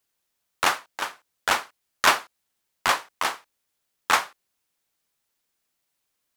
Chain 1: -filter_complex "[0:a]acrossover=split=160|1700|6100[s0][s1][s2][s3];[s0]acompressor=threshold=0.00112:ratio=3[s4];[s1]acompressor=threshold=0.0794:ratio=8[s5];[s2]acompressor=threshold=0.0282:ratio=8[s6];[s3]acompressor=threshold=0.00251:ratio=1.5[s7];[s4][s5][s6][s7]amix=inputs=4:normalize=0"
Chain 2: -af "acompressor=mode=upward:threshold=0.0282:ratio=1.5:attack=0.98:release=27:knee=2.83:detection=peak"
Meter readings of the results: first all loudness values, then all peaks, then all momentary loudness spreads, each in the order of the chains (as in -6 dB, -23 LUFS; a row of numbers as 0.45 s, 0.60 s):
-30.0 LUFS, -25.0 LUFS; -8.5 dBFS, -4.0 dBFS; 13 LU, 12 LU